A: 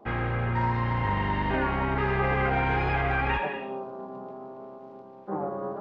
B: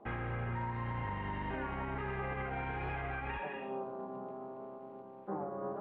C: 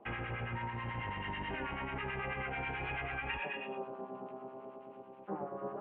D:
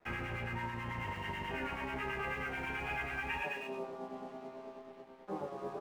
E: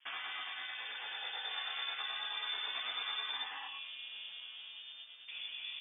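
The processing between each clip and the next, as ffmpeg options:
-af "lowpass=f=3.3k:w=0.5412,lowpass=f=3.3k:w=1.3066,alimiter=level_in=1.5dB:limit=-24dB:level=0:latency=1:release=365,volume=-1.5dB,volume=-4dB"
-filter_complex "[0:a]lowpass=f=2.8k:t=q:w=3.5,lowshelf=f=150:g=-3,acrossover=split=970[a][b];[a]aeval=exprs='val(0)*(1-0.7/2+0.7/2*cos(2*PI*9.2*n/s))':c=same[c];[b]aeval=exprs='val(0)*(1-0.7/2-0.7/2*cos(2*PI*9.2*n/s))':c=same[d];[c][d]amix=inputs=2:normalize=0,volume=1.5dB"
-filter_complex "[0:a]aeval=exprs='sgn(val(0))*max(abs(val(0))-0.00133,0)':c=same,asplit=2[a][b];[b]aecho=0:1:12|35:0.668|0.473[c];[a][c]amix=inputs=2:normalize=0,volume=-1dB"
-af "afftfilt=real='re*lt(hypot(re,im),0.0355)':imag='im*lt(hypot(re,im),0.0355)':win_size=1024:overlap=0.75,asubboost=boost=7:cutoff=130,lowpass=f=3.1k:t=q:w=0.5098,lowpass=f=3.1k:t=q:w=0.6013,lowpass=f=3.1k:t=q:w=0.9,lowpass=f=3.1k:t=q:w=2.563,afreqshift=-3600,volume=1.5dB"

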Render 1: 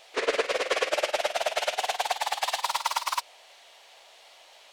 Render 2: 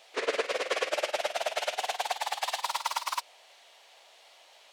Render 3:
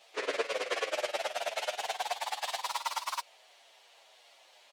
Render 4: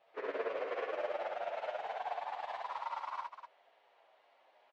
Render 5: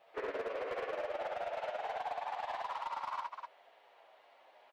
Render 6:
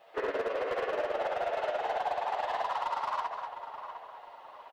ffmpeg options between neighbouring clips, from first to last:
-af "highpass=120,volume=-3.5dB"
-filter_complex "[0:a]asplit=2[a][b];[b]adelay=8.1,afreqshift=-2.8[c];[a][c]amix=inputs=2:normalize=1"
-filter_complex "[0:a]lowpass=1.5k,asplit=2[a][b];[b]aecho=0:1:67.06|253.6:0.891|0.398[c];[a][c]amix=inputs=2:normalize=0,volume=-5.5dB"
-af "acompressor=threshold=-40dB:ratio=4,asoftclip=type=hard:threshold=-37.5dB,volume=5dB"
-filter_complex "[0:a]bandreject=f=2.3k:w=13,asplit=2[a][b];[b]adelay=706,lowpass=f=2k:p=1,volume=-9dB,asplit=2[c][d];[d]adelay=706,lowpass=f=2k:p=1,volume=0.45,asplit=2[e][f];[f]adelay=706,lowpass=f=2k:p=1,volume=0.45,asplit=2[g][h];[h]adelay=706,lowpass=f=2k:p=1,volume=0.45,asplit=2[i][j];[j]adelay=706,lowpass=f=2k:p=1,volume=0.45[k];[a][c][e][g][i][k]amix=inputs=6:normalize=0,volume=6.5dB"

